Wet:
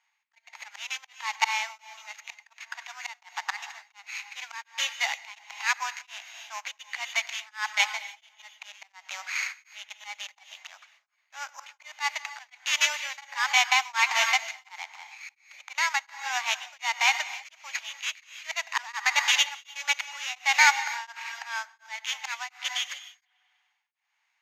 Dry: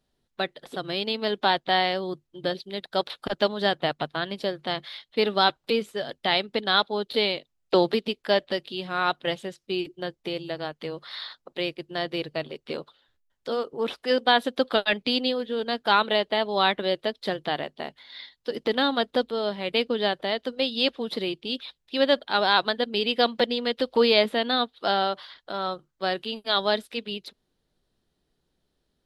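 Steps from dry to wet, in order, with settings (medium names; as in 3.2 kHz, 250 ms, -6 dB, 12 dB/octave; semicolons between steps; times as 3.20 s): sorted samples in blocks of 8 samples; low-pass 4.6 kHz 12 dB/octave; peaking EQ 1.9 kHz +10.5 dB 0.84 oct; slow attack 391 ms; wide varispeed 1.19×; elliptic high-pass 850 Hz, stop band 50 dB; on a send: feedback echo behind a low-pass 99 ms, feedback 70%, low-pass 2.5 kHz, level -23 dB; on the sum: gated-style reverb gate 330 ms rising, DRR 11.5 dB; tremolo of two beating tones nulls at 1.4 Hz; trim +6.5 dB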